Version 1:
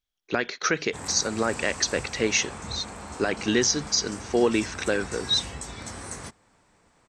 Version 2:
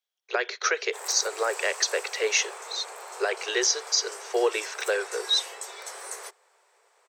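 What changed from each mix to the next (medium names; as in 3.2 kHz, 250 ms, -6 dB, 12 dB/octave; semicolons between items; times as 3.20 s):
background: remove low-pass 9.5 kHz 24 dB/octave; master: add steep high-pass 380 Hz 96 dB/octave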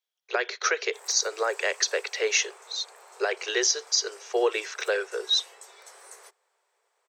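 background -10.0 dB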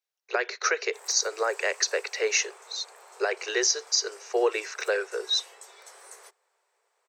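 speech: add peaking EQ 3.3 kHz -12.5 dB 0.2 oct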